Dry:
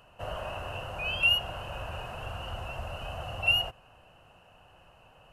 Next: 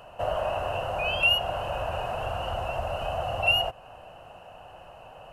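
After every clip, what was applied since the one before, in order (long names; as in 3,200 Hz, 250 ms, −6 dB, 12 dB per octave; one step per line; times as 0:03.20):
parametric band 670 Hz +9 dB 1.1 octaves
in parallel at −1 dB: downward compressor, threshold −37 dBFS, peak gain reduction 16.5 dB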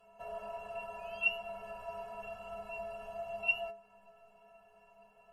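stiff-string resonator 200 Hz, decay 0.44 s, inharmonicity 0.03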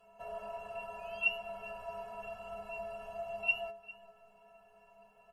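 single-tap delay 401 ms −19.5 dB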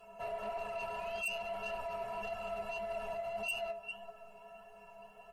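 in parallel at −2 dB: compressor whose output falls as the input rises −44 dBFS, ratio −0.5
on the sum: soft clipping −33.5 dBFS, distortion −10 dB
flanger 1.7 Hz, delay 2.4 ms, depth 5.9 ms, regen +64%
level +4.5 dB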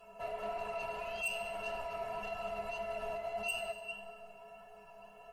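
feedback delay network reverb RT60 1.9 s, high-frequency decay 0.7×, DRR 5 dB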